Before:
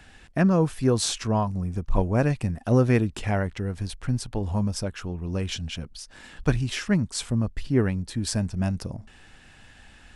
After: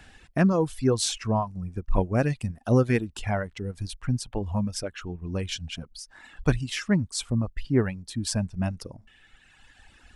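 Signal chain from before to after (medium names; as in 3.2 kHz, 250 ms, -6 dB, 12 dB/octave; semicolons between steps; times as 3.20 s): reverb removal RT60 1.9 s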